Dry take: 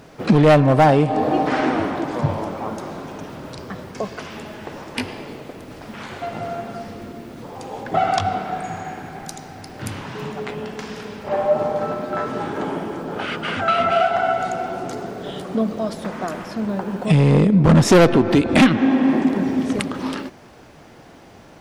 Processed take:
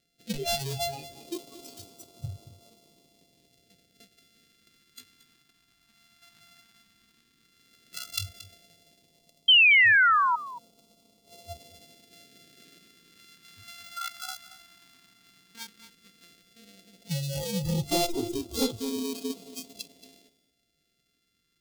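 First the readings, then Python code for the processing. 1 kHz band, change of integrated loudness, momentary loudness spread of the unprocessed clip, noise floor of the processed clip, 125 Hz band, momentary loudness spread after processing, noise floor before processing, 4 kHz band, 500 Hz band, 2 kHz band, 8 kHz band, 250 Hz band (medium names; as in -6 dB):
-11.5 dB, -4.5 dB, 20 LU, -74 dBFS, -18.0 dB, 25 LU, -45 dBFS, +3.5 dB, -18.5 dB, +2.0 dB, -3.5 dB, -19.0 dB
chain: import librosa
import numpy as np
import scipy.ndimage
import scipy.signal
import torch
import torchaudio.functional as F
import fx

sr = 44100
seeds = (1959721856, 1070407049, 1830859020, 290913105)

p1 = np.r_[np.sort(x[:len(x) // 64 * 64].reshape(-1, 64), axis=1).ravel(), x[len(x) // 64 * 64:]]
p2 = fx.noise_reduce_blind(p1, sr, reduce_db=27)
p3 = fx.low_shelf(p2, sr, hz=340.0, db=-6.5)
p4 = fx.over_compress(p3, sr, threshold_db=-30.0, ratio=-0.5)
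p5 = p3 + (p4 * librosa.db_to_amplitude(-1.0))
p6 = fx.phaser_stages(p5, sr, stages=2, low_hz=520.0, high_hz=1700.0, hz=0.12, feedback_pct=15)
p7 = fx.spec_paint(p6, sr, seeds[0], shape='fall', start_s=9.48, length_s=0.88, low_hz=930.0, high_hz=3200.0, level_db=-10.0)
p8 = fx.graphic_eq_15(p7, sr, hz=(100, 1000, 4000), db=(-6, -6, 5))
p9 = p8 + fx.echo_single(p8, sr, ms=227, db=-15.5, dry=0)
y = p9 * librosa.db_to_amplitude(-8.0)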